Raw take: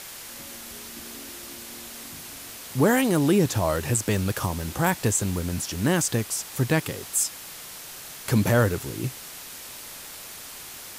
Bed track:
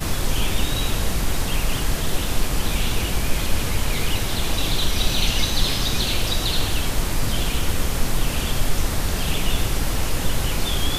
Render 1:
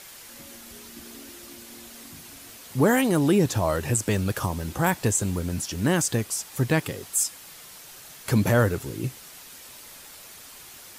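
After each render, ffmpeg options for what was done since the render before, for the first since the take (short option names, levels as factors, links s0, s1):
-af "afftdn=nr=6:nf=-41"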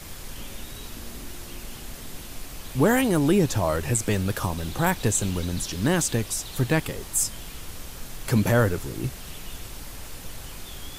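-filter_complex "[1:a]volume=0.133[s0];[0:a][s0]amix=inputs=2:normalize=0"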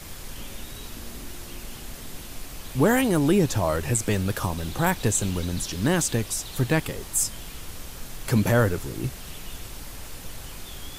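-af anull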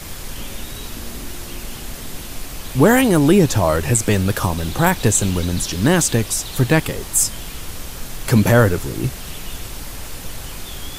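-af "volume=2.37,alimiter=limit=0.794:level=0:latency=1"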